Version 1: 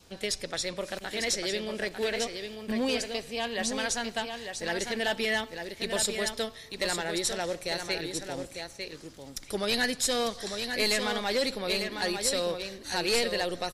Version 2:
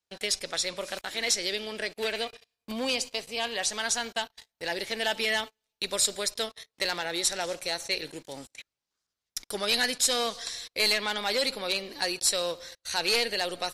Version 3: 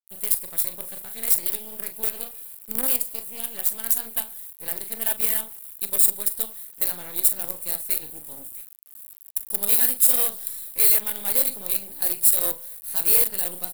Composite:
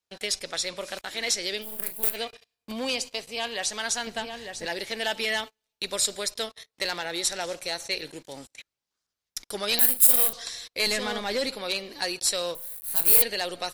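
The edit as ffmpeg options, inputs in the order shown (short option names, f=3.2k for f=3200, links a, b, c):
-filter_complex "[2:a]asplit=3[a][b][c];[0:a]asplit=2[d][e];[1:a]asplit=6[f][g][h][i][j][k];[f]atrim=end=1.65[l];[a]atrim=start=1.61:end=2.17[m];[g]atrim=start=2.13:end=4.072[n];[d]atrim=start=4.068:end=4.662[o];[h]atrim=start=4.658:end=9.792[p];[b]atrim=start=9.788:end=10.332[q];[i]atrim=start=10.328:end=10.872[r];[e]atrim=start=10.868:end=11.492[s];[j]atrim=start=11.488:end=12.552[t];[c]atrim=start=12.548:end=13.222[u];[k]atrim=start=13.218[v];[l][m]acrossfade=d=0.04:c1=tri:c2=tri[w];[w][n]acrossfade=d=0.04:c1=tri:c2=tri[x];[x][o]acrossfade=d=0.004:c1=hsin:c2=hsin[y];[y][p]acrossfade=d=0.004:c1=hsin:c2=hsin[z];[z][q]acrossfade=d=0.004:c1=hsin:c2=hsin[aa];[aa][r]acrossfade=d=0.004:c1=hsin:c2=hsin[ab];[ab][s]acrossfade=d=0.004:c1=hsin:c2=hsin[ac];[ac][t]acrossfade=d=0.004:c1=hsin:c2=hsin[ad];[ad][u]acrossfade=d=0.004:c1=hsin:c2=hsin[ae];[ae][v]acrossfade=d=0.004:c1=hsin:c2=hsin"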